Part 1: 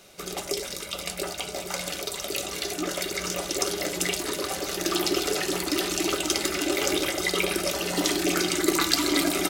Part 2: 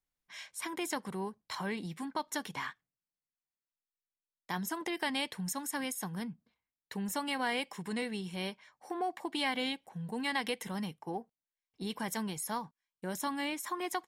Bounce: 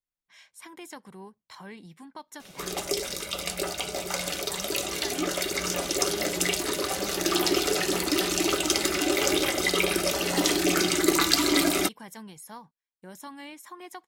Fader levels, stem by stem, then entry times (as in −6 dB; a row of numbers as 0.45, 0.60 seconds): +1.0, −7.0 decibels; 2.40, 0.00 seconds